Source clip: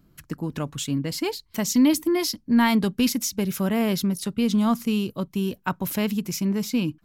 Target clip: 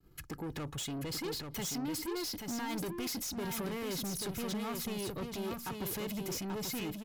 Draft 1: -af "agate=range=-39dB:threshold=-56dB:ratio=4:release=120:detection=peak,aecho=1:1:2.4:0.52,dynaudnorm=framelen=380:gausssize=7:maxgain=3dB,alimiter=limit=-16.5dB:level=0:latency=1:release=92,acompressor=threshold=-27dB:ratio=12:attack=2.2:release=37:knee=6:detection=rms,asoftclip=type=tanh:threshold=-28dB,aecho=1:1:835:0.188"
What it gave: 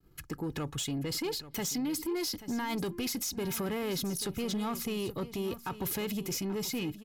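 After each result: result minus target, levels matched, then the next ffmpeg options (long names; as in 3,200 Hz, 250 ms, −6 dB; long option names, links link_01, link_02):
echo-to-direct −9.5 dB; soft clipping: distortion −8 dB
-af "agate=range=-39dB:threshold=-56dB:ratio=4:release=120:detection=peak,aecho=1:1:2.4:0.52,dynaudnorm=framelen=380:gausssize=7:maxgain=3dB,alimiter=limit=-16.5dB:level=0:latency=1:release=92,acompressor=threshold=-27dB:ratio=12:attack=2.2:release=37:knee=6:detection=rms,asoftclip=type=tanh:threshold=-28dB,aecho=1:1:835:0.562"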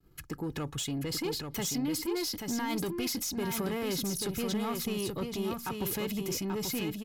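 soft clipping: distortion −8 dB
-af "agate=range=-39dB:threshold=-56dB:ratio=4:release=120:detection=peak,aecho=1:1:2.4:0.52,dynaudnorm=framelen=380:gausssize=7:maxgain=3dB,alimiter=limit=-16.5dB:level=0:latency=1:release=92,acompressor=threshold=-27dB:ratio=12:attack=2.2:release=37:knee=6:detection=rms,asoftclip=type=tanh:threshold=-36dB,aecho=1:1:835:0.562"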